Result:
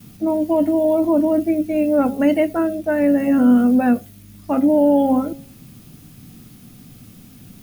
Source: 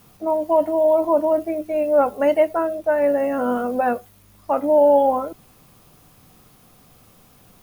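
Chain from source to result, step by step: de-hum 136.7 Hz, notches 6; gate with hold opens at -45 dBFS; ten-band EQ 125 Hz +6 dB, 250 Hz +10 dB, 500 Hz -7 dB, 1000 Hz -10 dB; in parallel at -1 dB: limiter -15.5 dBFS, peak gain reduction 7 dB

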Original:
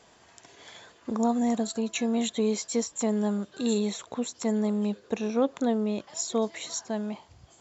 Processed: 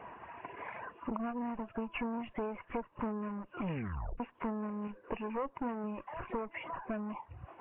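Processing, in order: soft clip -19 dBFS, distortion -19 dB; 3.5 tape stop 0.70 s; 4.87–5.84 dynamic EQ 150 Hz, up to -7 dB, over -50 dBFS, Q 3.5; one-sided clip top -36.5 dBFS, bottom -22 dBFS; Chebyshev low-pass 2800 Hz, order 8; bell 1000 Hz +11 dB 0.42 oct; compressor 3:1, threshold -45 dBFS, peak gain reduction 14 dB; reverb removal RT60 0.88 s; gain +7.5 dB; Nellymoser 16 kbps 8000 Hz

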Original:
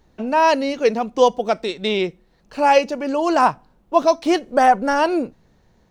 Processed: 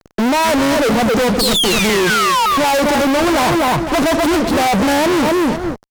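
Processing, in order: 1.31–1.9 minimum comb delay 0.59 ms; overloaded stage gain 17.5 dB; bell 100 Hz +4.5 dB 2.9 oct; 1.39–2.46 painted sound fall 880–4600 Hz -21 dBFS; bell 2500 Hz -11.5 dB 1.4 oct; feedback echo 0.253 s, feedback 15%, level -8 dB; fuzz box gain 43 dB, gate -46 dBFS; Vorbis 192 kbps 48000 Hz

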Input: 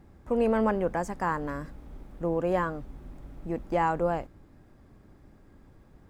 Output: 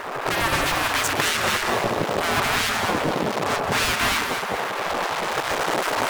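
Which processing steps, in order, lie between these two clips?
recorder AGC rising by 14 dB/s; high shelf 2100 Hz -10 dB; in parallel at +2 dB: compressor, threshold -41 dBFS, peak gain reduction 18.5 dB; on the sum: limiter -21 dBFS, peak gain reduction 7.5 dB; fuzz box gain 47 dB, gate -50 dBFS; on a send: echo with dull and thin repeats by turns 0.107 s, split 1200 Hz, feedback 64%, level -2.5 dB; on the sum: spectral gate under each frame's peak -15 dB weak

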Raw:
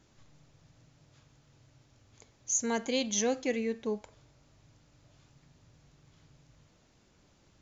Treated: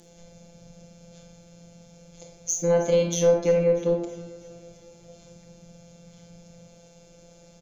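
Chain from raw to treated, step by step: ring modulator 56 Hz; band shelf 680 Hz +13 dB 1 oct; robotiser 171 Hz; EQ curve 460 Hz 0 dB, 720 Hz -15 dB, 6900 Hz +3 dB; treble ducked by the level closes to 1200 Hz, closed at -25 dBFS; added harmonics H 8 -37 dB, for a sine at -15 dBFS; in parallel at +2.5 dB: compressor, threshold -44 dBFS, peak gain reduction 17 dB; on the sum: soft clip -19 dBFS, distortion -24 dB; feedback echo 0.321 s, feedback 58%, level -19 dB; on a send at -2.5 dB: reverb RT60 0.65 s, pre-delay 25 ms; on the sum: gain +8 dB

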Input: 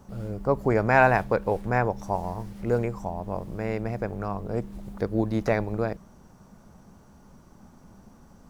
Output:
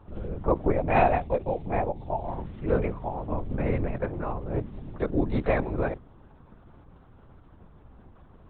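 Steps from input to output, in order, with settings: 0.72–2.28 fixed phaser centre 360 Hz, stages 6; 3.31–3.86 low shelf 180 Hz +8 dB; LPC vocoder at 8 kHz whisper

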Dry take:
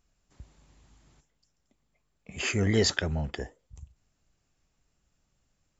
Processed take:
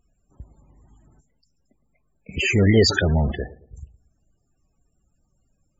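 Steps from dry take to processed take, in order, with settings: 2.37–3.32 zero-crossing step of -27.5 dBFS; darkening echo 0.112 s, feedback 41%, low-pass 1200 Hz, level -18 dB; loudest bins only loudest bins 32; gain +7 dB

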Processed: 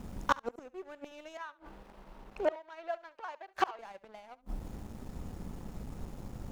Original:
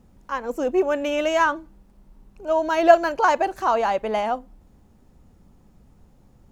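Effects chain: flipped gate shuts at -20 dBFS, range -35 dB; sample leveller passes 2; 1.37–3.79 three-band isolator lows -15 dB, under 420 Hz, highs -13 dB, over 4300 Hz; flutter echo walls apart 12 m, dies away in 0.21 s; gain +4 dB

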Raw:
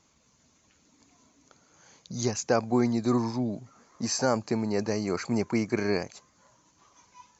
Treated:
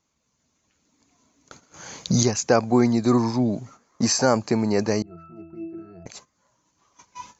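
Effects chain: recorder AGC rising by 5.8 dB/s; gate -50 dBFS, range -15 dB; 5.02–6.06 octave resonator E, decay 0.6 s; gain +6 dB

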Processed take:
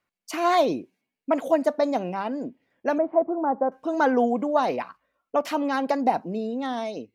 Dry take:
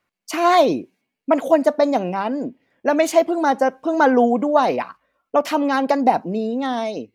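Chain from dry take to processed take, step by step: 2.98–3.72 inverse Chebyshev low-pass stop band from 6500 Hz, stop band 80 dB; gain -6 dB

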